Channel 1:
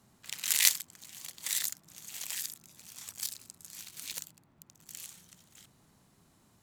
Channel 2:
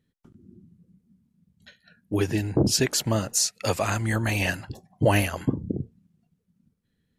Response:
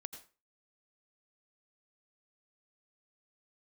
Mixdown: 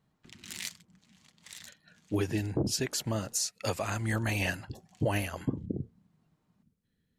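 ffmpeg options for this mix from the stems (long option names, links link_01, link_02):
-filter_complex "[0:a]aecho=1:1:6.5:0.33,adynamicsmooth=sensitivity=2.5:basefreq=4100,volume=-10dB[link_01];[1:a]volume=-4dB,asplit=2[link_02][link_03];[link_03]apad=whole_len=292469[link_04];[link_01][link_04]sidechaincompress=threshold=-31dB:ratio=8:attack=44:release=801[link_05];[link_05][link_02]amix=inputs=2:normalize=0,alimiter=limit=-19.5dB:level=0:latency=1:release=374"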